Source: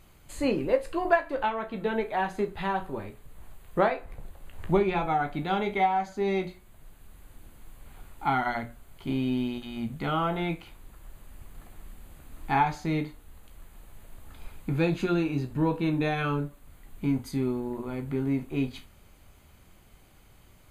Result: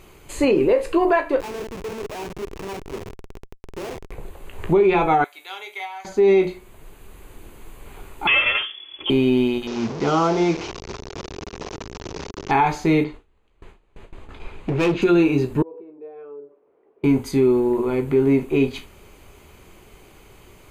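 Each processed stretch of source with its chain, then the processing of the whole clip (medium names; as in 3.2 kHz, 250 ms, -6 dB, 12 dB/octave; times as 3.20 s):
1.40–4.11 s: sorted samples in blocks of 8 samples + compression 5:1, threshold -39 dBFS + Schmitt trigger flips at -41.5 dBFS
5.24–6.05 s: high-pass 520 Hz + differentiator
8.27–9.10 s: comb filter that takes the minimum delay 3.9 ms + frequency inversion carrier 3.4 kHz
9.67–12.51 s: one-bit delta coder 32 kbps, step -31.5 dBFS + high-pass 95 Hz 6 dB/octave + peaking EQ 2.5 kHz -7.5 dB 1.8 oct
13.04–15.02 s: gate with hold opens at -37 dBFS, closes at -40 dBFS + low-pass 4.4 kHz + hard clipper -28 dBFS
15.62–17.04 s: compression 12:1, threshold -38 dBFS + ladder band-pass 500 Hz, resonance 55%
whole clip: fifteen-band graphic EQ 400 Hz +12 dB, 1 kHz +5 dB, 2.5 kHz +6 dB, 6.3 kHz +4 dB; loudness maximiser +14 dB; trim -8 dB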